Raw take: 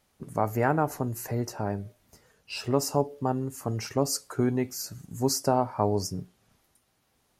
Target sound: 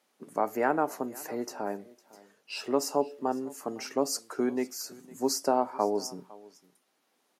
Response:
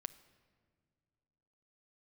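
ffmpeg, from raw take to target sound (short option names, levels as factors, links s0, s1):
-af "highpass=f=240:w=0.5412,highpass=f=240:w=1.3066,highshelf=f=7500:g=-4,aecho=1:1:506:0.0794,volume=0.891"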